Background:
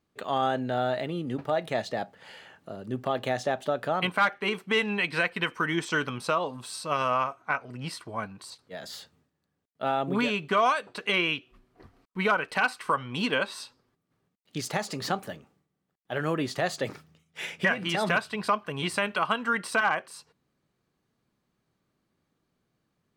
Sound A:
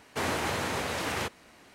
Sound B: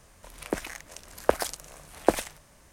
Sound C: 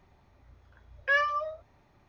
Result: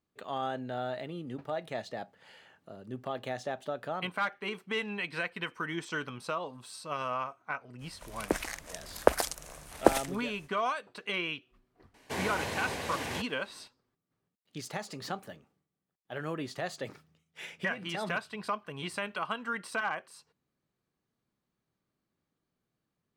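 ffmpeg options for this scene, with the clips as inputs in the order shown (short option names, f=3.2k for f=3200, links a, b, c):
-filter_complex "[0:a]volume=-8dB[a];[2:a]dynaudnorm=f=140:g=9:m=7dB[b];[1:a]bandreject=f=1.3k:w=5[c];[b]atrim=end=2.72,asetpts=PTS-STARTPTS,volume=-2dB,afade=t=in:d=0.05,afade=t=out:st=2.67:d=0.05,adelay=343098S[d];[c]atrim=end=1.74,asetpts=PTS-STARTPTS,volume=-4.5dB,afade=t=in:d=0.004:c=hsin,afade=t=out:st=1.736:d=0.004:c=hsin,adelay=11940[e];[a][d][e]amix=inputs=3:normalize=0"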